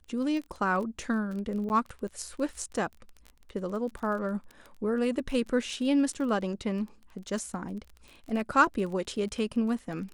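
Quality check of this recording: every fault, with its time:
crackle 24/s -36 dBFS
1.69–1.7 gap 9.6 ms

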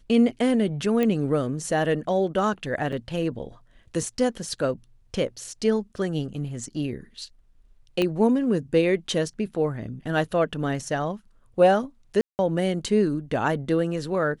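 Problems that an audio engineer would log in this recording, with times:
1.03 pop -13 dBFS
2.92–2.93 gap 5.5 ms
5.96 gap 3.5 ms
8.02 pop -12 dBFS
12.21–12.39 gap 0.179 s

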